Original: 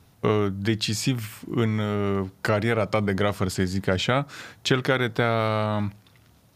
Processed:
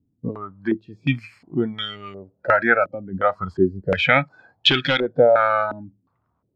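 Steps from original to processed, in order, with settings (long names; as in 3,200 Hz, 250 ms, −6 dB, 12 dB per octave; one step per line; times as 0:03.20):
noise reduction from a noise print of the clip's start 20 dB
0:04.67–0:05.11: hard clipping −19.5 dBFS, distortion −17 dB
low-pass on a step sequencer 2.8 Hz 280–3,100 Hz
level +4 dB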